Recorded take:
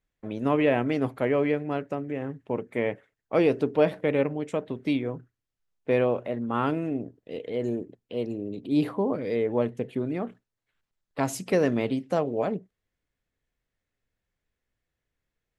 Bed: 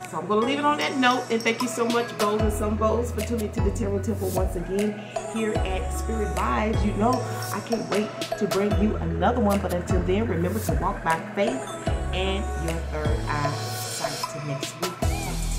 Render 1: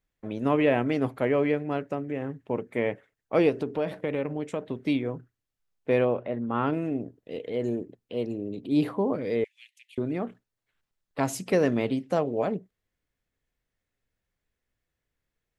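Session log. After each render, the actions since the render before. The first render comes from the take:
0:03.49–0:04.71: downward compressor 3 to 1, threshold −25 dBFS
0:06.05–0:06.73: high-frequency loss of the air 180 metres
0:09.44–0:09.98: Butterworth high-pass 2,300 Hz 48 dB per octave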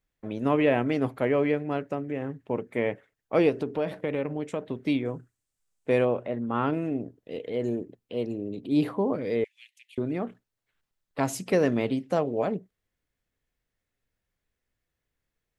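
0:05.05–0:06.67: parametric band 8,100 Hz +11.5 dB 0.79 octaves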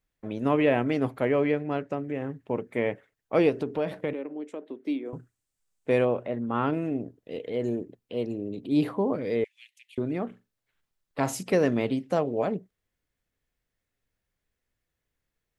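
0:01.40–0:02.01: low-pass filter 8,200 Hz
0:04.13–0:05.13: four-pole ladder high-pass 260 Hz, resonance 50%
0:10.27–0:11.43: flutter between parallel walls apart 7.3 metres, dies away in 0.22 s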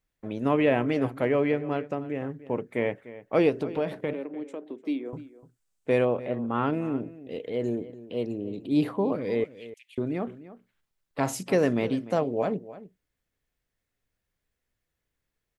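slap from a distant wall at 51 metres, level −16 dB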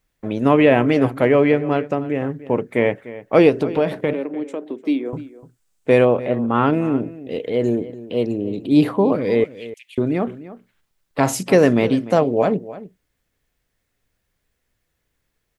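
level +9.5 dB
brickwall limiter −2 dBFS, peak gain reduction 1 dB

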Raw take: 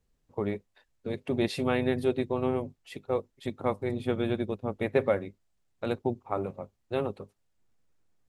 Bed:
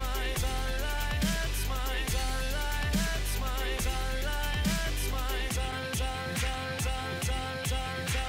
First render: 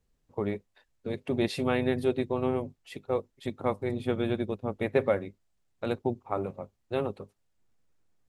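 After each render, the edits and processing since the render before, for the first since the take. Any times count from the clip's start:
no processing that can be heard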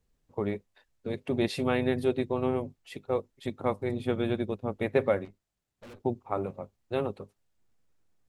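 0:05.25–0:06.00: tube saturation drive 46 dB, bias 0.5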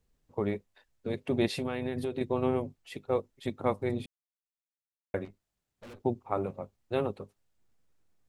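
0:01.53–0:02.21: downward compressor 10 to 1, threshold −28 dBFS
0:04.06–0:05.14: silence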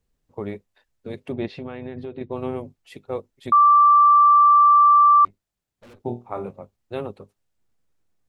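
0:01.32–0:02.32: high-frequency loss of the air 240 metres
0:03.52–0:05.25: beep over 1,170 Hz −10 dBFS
0:06.05–0:06.49: flutter between parallel walls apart 4.3 metres, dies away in 0.24 s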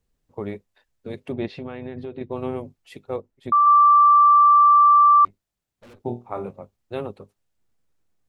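0:03.16–0:03.67: high-shelf EQ 2,100 Hz −9.5 dB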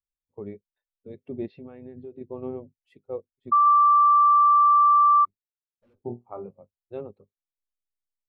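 downward compressor 5 to 1, threshold −18 dBFS, peak gain reduction 6 dB
every bin expanded away from the loudest bin 1.5 to 1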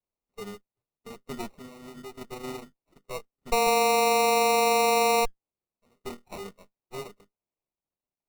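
lower of the sound and its delayed copy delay 4.6 ms
decimation without filtering 27×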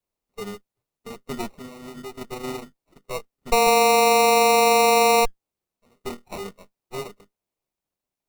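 level +5.5 dB

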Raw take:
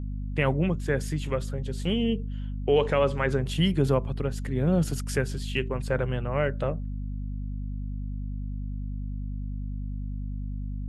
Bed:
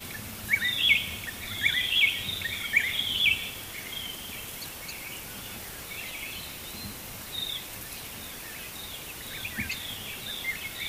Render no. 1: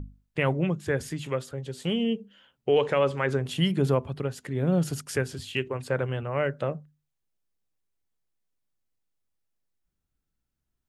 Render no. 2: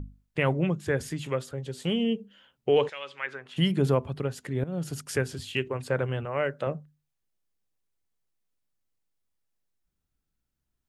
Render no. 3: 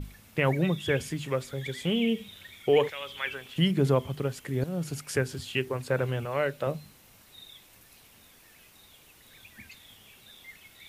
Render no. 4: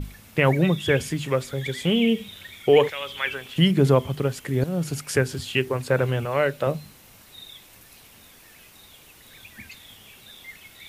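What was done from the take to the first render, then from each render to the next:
mains-hum notches 50/100/150/200/250 Hz
0:02.88–0:03.56: resonant band-pass 5,000 Hz → 1,200 Hz, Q 1.4; 0:04.64–0:05.10: fade in, from −16 dB; 0:06.25–0:06.67: low-shelf EQ 170 Hz −9.5 dB
mix in bed −16 dB
level +6 dB

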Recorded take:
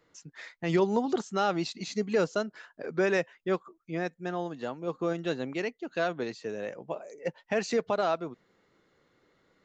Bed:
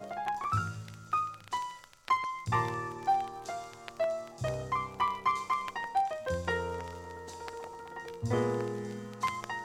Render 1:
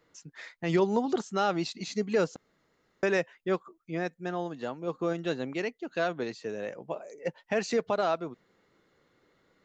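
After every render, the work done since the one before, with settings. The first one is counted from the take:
0:02.36–0:03.03: fill with room tone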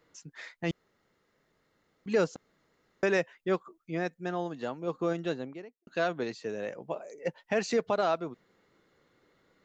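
0:00.71–0:02.06: fill with room tone
0:05.13–0:05.87: fade out and dull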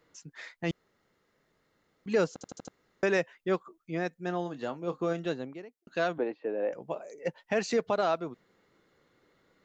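0:02.33: stutter in place 0.08 s, 5 plays
0:04.24–0:05.26: double-tracking delay 28 ms −13.5 dB
0:06.18–0:06.73: loudspeaker in its box 280–2,400 Hz, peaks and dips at 300 Hz +9 dB, 540 Hz +7 dB, 800 Hz +7 dB, 1,300 Hz −4 dB, 2,000 Hz −5 dB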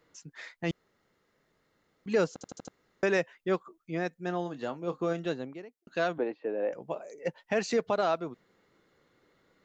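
no processing that can be heard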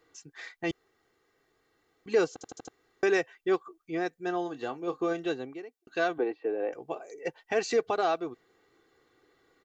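low-shelf EQ 110 Hz −6 dB
comb filter 2.6 ms, depth 63%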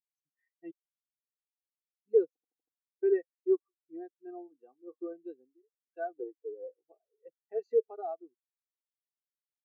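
every bin expanded away from the loudest bin 2.5 to 1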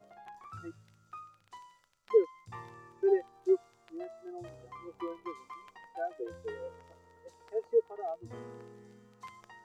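mix in bed −16.5 dB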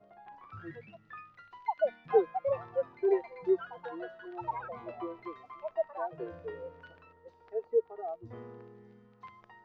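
delay with pitch and tempo change per echo 305 ms, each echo +6 semitones, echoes 2
high-frequency loss of the air 300 metres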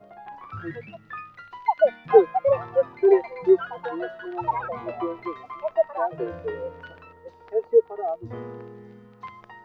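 level +10.5 dB

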